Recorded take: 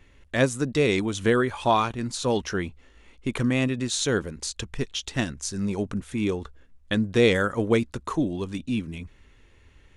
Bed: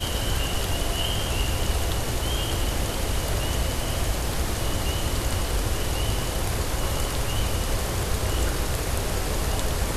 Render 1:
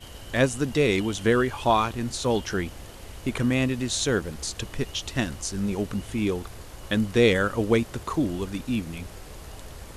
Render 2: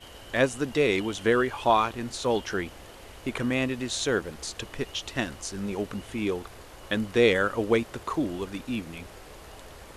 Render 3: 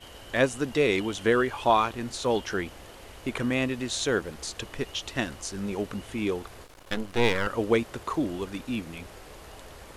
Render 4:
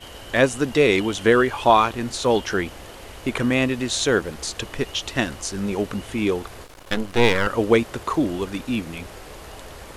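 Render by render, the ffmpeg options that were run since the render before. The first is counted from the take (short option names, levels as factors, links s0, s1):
-filter_complex "[1:a]volume=0.158[s0];[0:a][s0]amix=inputs=2:normalize=0"
-af "bass=f=250:g=-8,treble=f=4000:g=-5"
-filter_complex "[0:a]asettb=1/sr,asplit=3[s0][s1][s2];[s0]atrim=end=6.644[s3];[s1]atrim=start=6.64:end=7.47,asetpts=PTS-STARTPTS,afade=t=in:d=0.004:c=qsin,afade=t=out:st=0.826:d=0.004:c=qsin,aeval=exprs='max(val(0),0)':c=same[s4];[s2]atrim=start=7.466[s5];[s3][s4]acrossfade=d=0.004:c1=hsin:c2=qsin[s6];[s6][s5]acrossfade=d=0.004:c1=qsin:c2=hsin"
-af "volume=2.11,alimiter=limit=0.708:level=0:latency=1"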